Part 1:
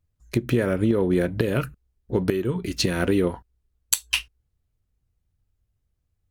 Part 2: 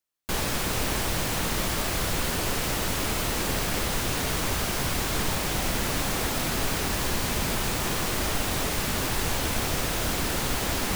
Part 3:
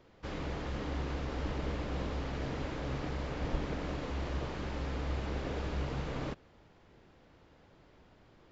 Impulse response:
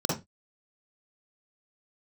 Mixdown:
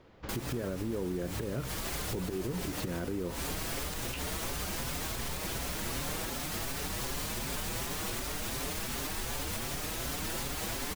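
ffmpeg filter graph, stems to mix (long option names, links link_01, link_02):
-filter_complex "[0:a]lowpass=frequency=1000:poles=1,alimiter=limit=-14dB:level=0:latency=1:release=49,volume=-6dB,asplit=2[link_01][link_02];[1:a]highshelf=frequency=6900:gain=12,asplit=2[link_03][link_04];[link_04]adelay=5.6,afreqshift=2.7[link_05];[link_03][link_05]amix=inputs=2:normalize=1,volume=-3.5dB[link_06];[2:a]acompressor=threshold=-42dB:ratio=6,volume=3dB[link_07];[link_02]apad=whole_len=483211[link_08];[link_06][link_08]sidechaincompress=threshold=-38dB:ratio=8:attack=16:release=176[link_09];[link_01][link_09][link_07]amix=inputs=3:normalize=0,highshelf=frequency=8000:gain=-9,alimiter=level_in=1.5dB:limit=-24dB:level=0:latency=1:release=120,volume=-1.5dB"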